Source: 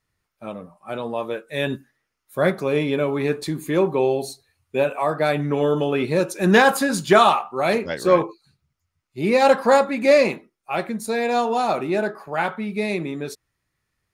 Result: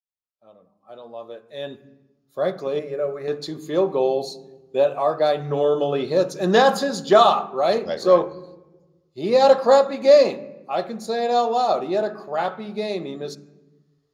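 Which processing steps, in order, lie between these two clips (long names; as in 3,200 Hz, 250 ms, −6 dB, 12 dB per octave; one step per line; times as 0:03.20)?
fade in at the beginning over 4.07 s
0:02.79–0:03.28: phaser with its sweep stopped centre 910 Hz, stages 6
convolution reverb RT60 1.2 s, pre-delay 3 ms, DRR 14.5 dB
0:06.58–0:07.71: one half of a high-frequency compander decoder only
level −5 dB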